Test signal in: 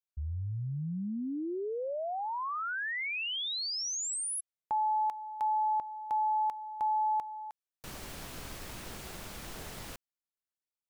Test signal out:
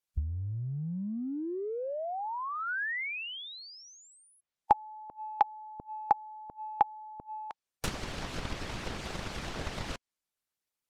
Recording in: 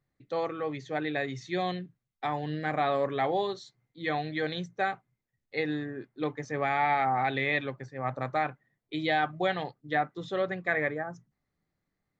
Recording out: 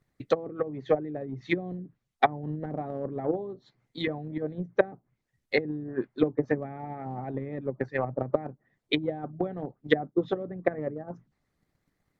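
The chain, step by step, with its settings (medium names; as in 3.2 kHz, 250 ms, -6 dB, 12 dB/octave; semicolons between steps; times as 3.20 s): low-pass that closes with the level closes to 330 Hz, closed at -29 dBFS; harmonic-percussive split percussive +9 dB; transient shaper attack +8 dB, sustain 0 dB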